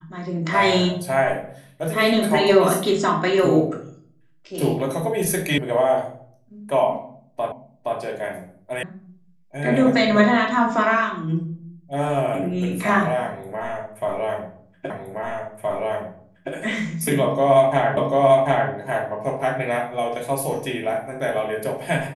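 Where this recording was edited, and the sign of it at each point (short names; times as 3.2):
5.58 sound cut off
7.52 repeat of the last 0.47 s
8.83 sound cut off
14.9 repeat of the last 1.62 s
17.97 repeat of the last 0.74 s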